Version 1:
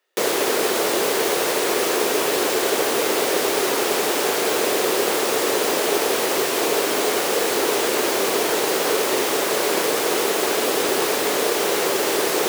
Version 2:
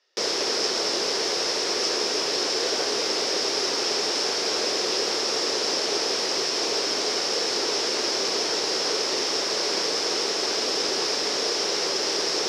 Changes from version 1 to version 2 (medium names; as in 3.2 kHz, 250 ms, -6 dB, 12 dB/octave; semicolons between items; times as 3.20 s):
background -8.0 dB; master: add resonant low-pass 5.3 kHz, resonance Q 7.7